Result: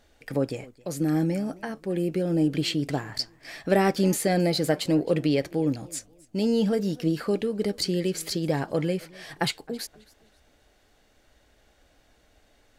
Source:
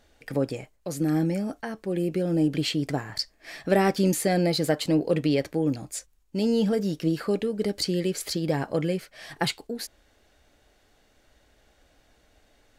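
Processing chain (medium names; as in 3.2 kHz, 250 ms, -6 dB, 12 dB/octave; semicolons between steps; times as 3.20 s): modulated delay 263 ms, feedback 31%, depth 165 cents, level -23 dB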